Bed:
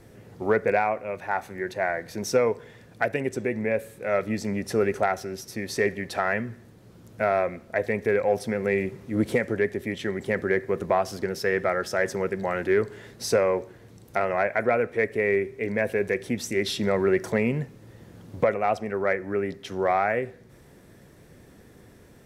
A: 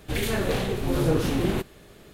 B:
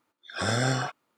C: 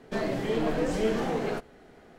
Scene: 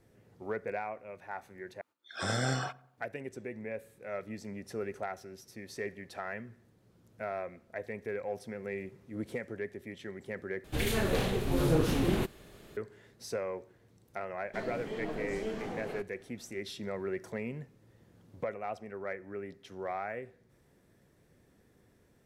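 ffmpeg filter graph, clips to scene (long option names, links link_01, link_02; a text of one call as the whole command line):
ffmpeg -i bed.wav -i cue0.wav -i cue1.wav -i cue2.wav -filter_complex "[0:a]volume=-14dB[link_01];[2:a]asplit=2[link_02][link_03];[link_03]adelay=91,lowpass=frequency=1600:poles=1,volume=-21dB,asplit=2[link_04][link_05];[link_05]adelay=91,lowpass=frequency=1600:poles=1,volume=0.5,asplit=2[link_06][link_07];[link_07]adelay=91,lowpass=frequency=1600:poles=1,volume=0.5,asplit=2[link_08][link_09];[link_09]adelay=91,lowpass=frequency=1600:poles=1,volume=0.5[link_10];[link_02][link_04][link_06][link_08][link_10]amix=inputs=5:normalize=0[link_11];[link_01]asplit=3[link_12][link_13][link_14];[link_12]atrim=end=1.814[link_15];[link_11]atrim=end=1.17,asetpts=PTS-STARTPTS,volume=-5.5dB[link_16];[link_13]atrim=start=2.976:end=10.644[link_17];[1:a]atrim=end=2.13,asetpts=PTS-STARTPTS,volume=-4dB[link_18];[link_14]atrim=start=12.766[link_19];[3:a]atrim=end=2.18,asetpts=PTS-STARTPTS,volume=-10.5dB,afade=type=in:duration=0.004:curve=hsin,afade=type=out:start_time=2.176:duration=0.004:curve=hsin,adelay=14420[link_20];[link_15][link_16]acrossfade=duration=0.004:curve1=hsin:curve2=hsin[link_21];[link_21][link_17]acrossfade=duration=0.004:curve1=hsin:curve2=hsin[link_22];[link_22][link_18]acrossfade=duration=0.004:curve1=hsin:curve2=hsin[link_23];[link_23][link_19]acrossfade=duration=0.004:curve1=hsin:curve2=hsin[link_24];[link_24][link_20]amix=inputs=2:normalize=0" out.wav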